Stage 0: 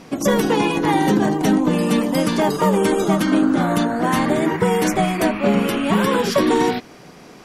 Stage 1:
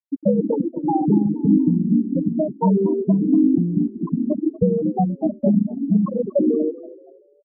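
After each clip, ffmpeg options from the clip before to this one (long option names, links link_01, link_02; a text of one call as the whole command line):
ffmpeg -i in.wav -filter_complex "[0:a]lowshelf=frequency=140:gain=8.5,afftfilt=real='re*gte(hypot(re,im),1)':imag='im*gte(hypot(re,im),1)':win_size=1024:overlap=0.75,asplit=4[link_01][link_02][link_03][link_04];[link_02]adelay=237,afreqshift=38,volume=-18dB[link_05];[link_03]adelay=474,afreqshift=76,volume=-27.4dB[link_06];[link_04]adelay=711,afreqshift=114,volume=-36.7dB[link_07];[link_01][link_05][link_06][link_07]amix=inputs=4:normalize=0" out.wav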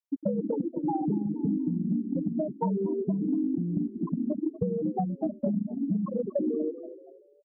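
ffmpeg -i in.wav -af "acompressor=threshold=-21dB:ratio=6,volume=-4dB" out.wav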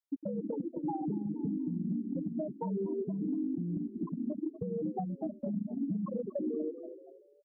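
ffmpeg -i in.wav -af "alimiter=limit=-23.5dB:level=0:latency=1:release=197,volume=-3dB" out.wav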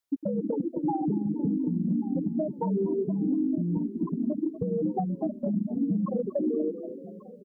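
ffmpeg -i in.wav -af "aecho=1:1:1138|2276:0.119|0.0345,volume=7dB" out.wav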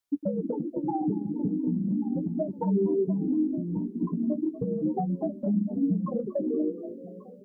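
ffmpeg -i in.wav -af "flanger=delay=9.9:depth=7.1:regen=25:speed=0.36:shape=sinusoidal,volume=3.5dB" out.wav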